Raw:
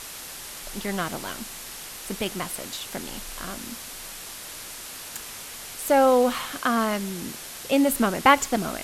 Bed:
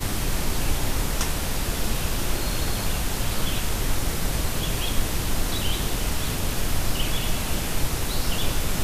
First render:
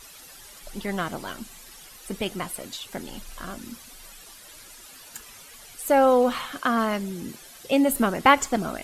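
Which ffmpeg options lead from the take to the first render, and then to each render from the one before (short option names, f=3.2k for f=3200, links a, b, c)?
-af "afftdn=nr=12:nf=-39"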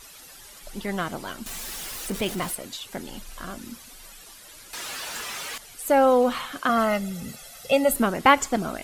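-filter_complex "[0:a]asettb=1/sr,asplit=3[a][b][c];[a]atrim=end=1.464[d];[b]atrim=start=1.46:end=2.55,asetpts=PTS-STARTPTS,afade=t=in:d=0.004:c=qsin,afade=t=out:st=1.086:d=0.004:c=qsin,aeval=exprs='val(0)+0.5*0.0266*sgn(val(0))':c=same[e];[c]atrim=start=2.546[f];[d][e]acrossfade=d=0.004:c1=hsin:c2=qsin[g];[g][f]acrossfade=d=0.004:c1=qsin:c2=hsin,asettb=1/sr,asplit=3[h][i][j];[h]atrim=end=4.734[k];[i]atrim=start=4.73:end=5.58,asetpts=PTS-STARTPTS,afade=t=in:d=0.004:c=qsin,afade=t=out:st=0.846:d=0.004:c=qsin,asplit=2[l][m];[m]highpass=f=720:p=1,volume=29dB,asoftclip=type=tanh:threshold=-21dB[n];[l][n]amix=inputs=2:normalize=0,lowpass=f=3.3k:p=1,volume=-6dB[o];[j]atrim=start=5.576[p];[k][o]acrossfade=d=0.004:c1=hsin:c2=qsin[q];[q][p]acrossfade=d=0.004:c1=qsin:c2=hsin,asettb=1/sr,asplit=3[r][s][t];[r]atrim=end=6.694[u];[s]atrim=start=6.69:end=7.94,asetpts=PTS-STARTPTS,afade=t=in:d=0.004:c=qsin,afade=t=out:st=1.246:d=0.004:c=qsin,aecho=1:1:1.5:0.87,atrim=end_sample=55125[v];[t]atrim=start=7.936[w];[u][v]acrossfade=d=0.004:c1=hsin:c2=qsin[x];[x][w]acrossfade=d=0.004:c1=qsin:c2=hsin"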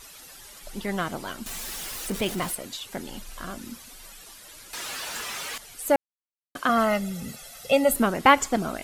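-filter_complex "[0:a]asplit=3[a][b][c];[a]atrim=end=5.96,asetpts=PTS-STARTPTS,afade=t=out:st=5.956:d=0.004:c=hsin[d];[b]atrim=start=5.96:end=6.55,asetpts=PTS-STARTPTS,volume=0[e];[c]atrim=start=6.55,asetpts=PTS-STARTPTS,afade=t=in:d=0.004:c=hsin[f];[d][e][f]concat=n=3:v=0:a=1"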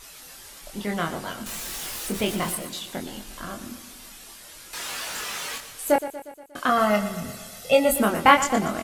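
-filter_complex "[0:a]asplit=2[a][b];[b]adelay=24,volume=-4dB[c];[a][c]amix=inputs=2:normalize=0,asplit=2[d][e];[e]aecho=0:1:119|238|357|476|595|714:0.224|0.132|0.0779|0.046|0.0271|0.016[f];[d][f]amix=inputs=2:normalize=0"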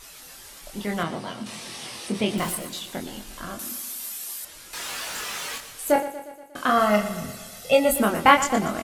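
-filter_complex "[0:a]asettb=1/sr,asplit=3[a][b][c];[a]atrim=end=1.034[d];[b]atrim=start=1.03:end=2.38,asetpts=PTS-STARTPTS,afade=t=in:d=0.004:c=qsin,afade=t=out:st=1.346:d=0.004:c=qsin,highpass=120,equalizer=f=120:t=q:w=4:g=6,equalizer=f=220:t=q:w=4:g=4,equalizer=f=1.5k:t=q:w=4:g=-7,equalizer=f=7.1k:t=q:w=4:g=-10,lowpass=f=9k:w=0.5412,lowpass=f=9k:w=1.3066[e];[c]atrim=start=2.376[f];[d][e]acrossfade=d=0.004:c1=hsin:c2=qsin[g];[g][f]acrossfade=d=0.004:c1=qsin:c2=hsin,asettb=1/sr,asplit=3[h][i][j];[h]atrim=end=3.594[k];[i]atrim=start=3.59:end=4.45,asetpts=PTS-STARTPTS,afade=t=in:d=0.004:c=qsin,afade=t=out:st=0.856:d=0.004:c=qsin,aemphasis=mode=production:type=bsi[l];[j]atrim=start=4.446[m];[k][l]acrossfade=d=0.004:c1=hsin:c2=qsin[n];[n][m]acrossfade=d=0.004:c1=qsin:c2=hsin,asplit=3[o][p][q];[o]afade=t=out:st=5.95:d=0.02[r];[p]asplit=2[s][t];[t]adelay=43,volume=-8dB[u];[s][u]amix=inputs=2:normalize=0,afade=t=in:st=5.95:d=0.02,afade=t=out:st=7.26:d=0.02[v];[q]afade=t=in:st=7.26:d=0.02[w];[r][v][w]amix=inputs=3:normalize=0"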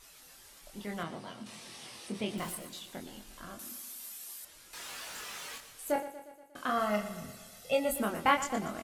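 -af "volume=-11dB"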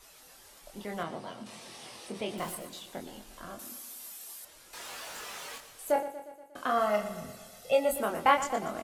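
-filter_complex "[0:a]acrossover=split=430|910|5400[a][b][c][d];[a]alimiter=level_in=12.5dB:limit=-24dB:level=0:latency=1,volume=-12.5dB[e];[b]acontrast=77[f];[e][f][c][d]amix=inputs=4:normalize=0"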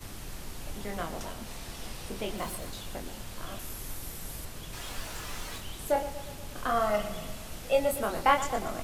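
-filter_complex "[1:a]volume=-16.5dB[a];[0:a][a]amix=inputs=2:normalize=0"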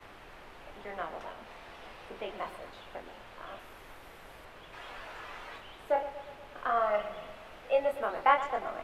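-filter_complex "[0:a]acrossover=split=400 2900:gain=0.158 1 0.0631[a][b][c];[a][b][c]amix=inputs=3:normalize=0"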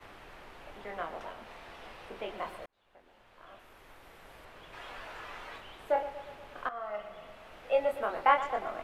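-filter_complex "[0:a]asplit=3[a][b][c];[a]atrim=end=2.66,asetpts=PTS-STARTPTS,afade=t=out:st=2.656:d=0.004:c=hsin[d];[b]atrim=start=2.66:end=6.69,asetpts=PTS-STARTPTS,afade=t=in:d=2.14,afade=t=out:st=4.026:d=0.004:c=hsin:silence=0.177828[e];[c]atrim=start=6.69,asetpts=PTS-STARTPTS,afade=t=in:d=1.08:silence=0.177828[f];[d][e][f]concat=n=3:v=0:a=1"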